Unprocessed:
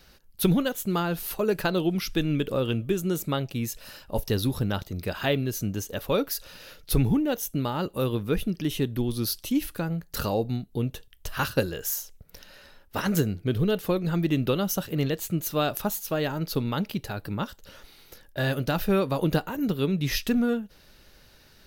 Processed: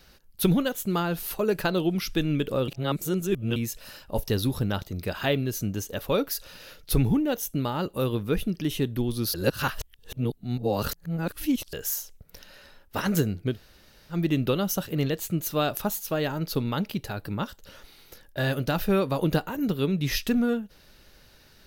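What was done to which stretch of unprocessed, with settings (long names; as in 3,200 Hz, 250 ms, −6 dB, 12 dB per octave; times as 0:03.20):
0:02.68–0:03.56: reverse
0:09.34–0:11.73: reverse
0:13.53–0:14.14: fill with room tone, crossfade 0.10 s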